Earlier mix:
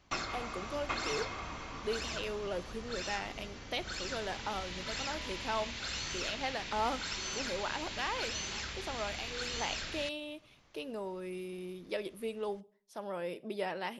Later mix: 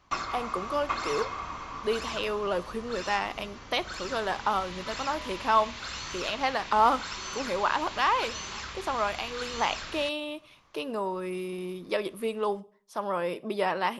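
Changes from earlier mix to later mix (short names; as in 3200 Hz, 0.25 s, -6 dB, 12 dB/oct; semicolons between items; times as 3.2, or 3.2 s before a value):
speech +7.0 dB; master: add bell 1100 Hz +10 dB 0.59 oct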